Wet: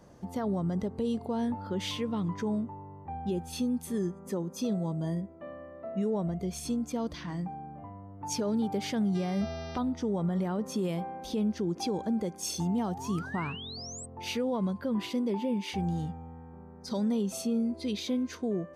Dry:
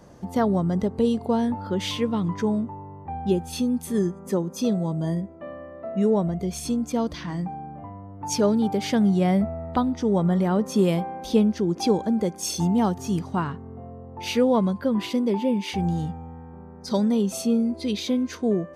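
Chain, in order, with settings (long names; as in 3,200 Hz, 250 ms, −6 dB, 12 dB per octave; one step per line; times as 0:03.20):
brickwall limiter −16.5 dBFS, peak gain reduction 9 dB
0:09.14–0:09.77: hum with harmonics 400 Hz, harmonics 15, −41 dBFS −3 dB per octave
0:12.87–0:14.06: sound drawn into the spectrogram rise 660–8,400 Hz −37 dBFS
level −6 dB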